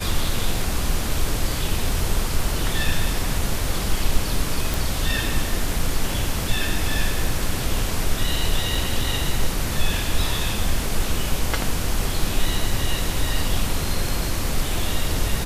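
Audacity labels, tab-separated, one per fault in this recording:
4.740000	4.740000	pop
8.750000	8.750000	dropout 3.5 ms

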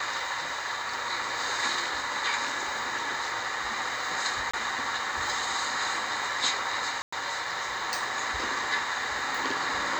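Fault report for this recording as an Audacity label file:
4.510000	4.540000	dropout 25 ms
7.020000	7.120000	dropout 105 ms

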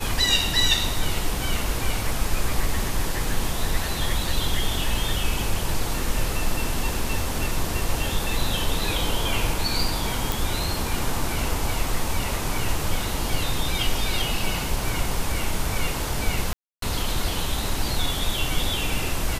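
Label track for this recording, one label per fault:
10.320000	10.320000	pop
16.530000	16.820000	dropout 293 ms

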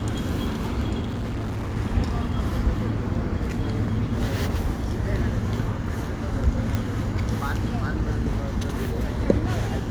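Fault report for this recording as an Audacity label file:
1.010000	1.770000	clipped -25.5 dBFS
6.750000	6.750000	pop -13 dBFS

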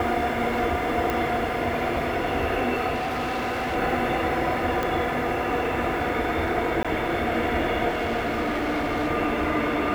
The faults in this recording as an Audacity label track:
1.100000	1.100000	pop
2.940000	3.760000	clipped -24 dBFS
4.830000	4.830000	pop
6.830000	6.850000	dropout 16 ms
7.880000	9.090000	clipped -21.5 dBFS

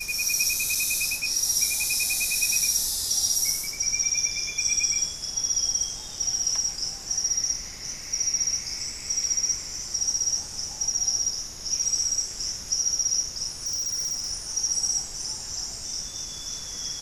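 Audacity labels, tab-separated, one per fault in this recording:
0.750000	0.750000	dropout 4.1 ms
13.630000	14.320000	clipped -25.5 dBFS

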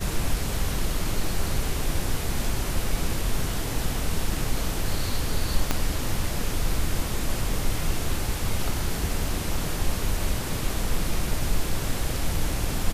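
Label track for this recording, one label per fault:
5.710000	5.710000	pop -7 dBFS

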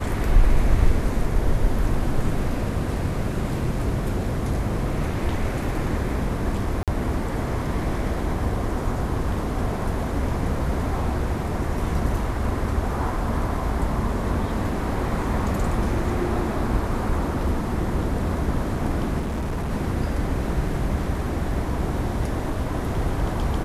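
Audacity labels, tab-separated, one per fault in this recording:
6.830000	6.880000	dropout 47 ms
19.190000	19.720000	clipped -23 dBFS

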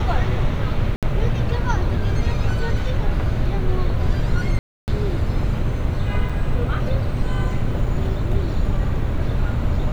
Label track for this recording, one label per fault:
0.960000	1.030000	dropout 67 ms
4.590000	4.880000	dropout 289 ms
6.290000	6.300000	dropout 5.5 ms

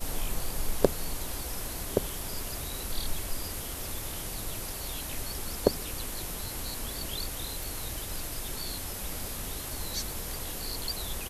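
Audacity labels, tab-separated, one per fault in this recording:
7.630000	7.630000	pop

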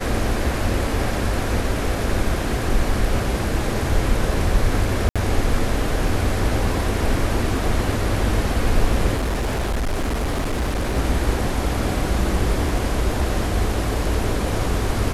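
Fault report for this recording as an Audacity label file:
5.090000	5.160000	dropout 66 ms
9.160000	10.970000	clipped -18.5 dBFS

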